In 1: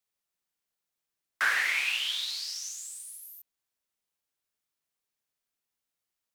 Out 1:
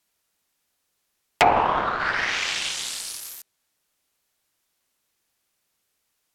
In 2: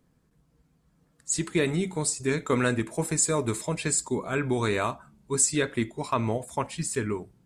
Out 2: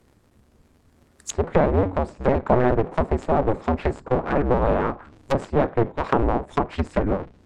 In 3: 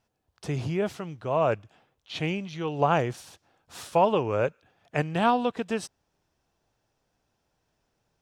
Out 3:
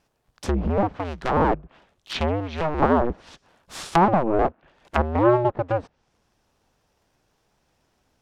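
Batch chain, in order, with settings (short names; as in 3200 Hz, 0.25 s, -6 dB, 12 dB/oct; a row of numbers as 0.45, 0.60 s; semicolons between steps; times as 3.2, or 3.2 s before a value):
cycle switcher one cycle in 2, inverted; treble ducked by the level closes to 880 Hz, closed at -25.5 dBFS; match loudness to -23 LUFS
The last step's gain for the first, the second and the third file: +13.5, +8.0, +7.0 dB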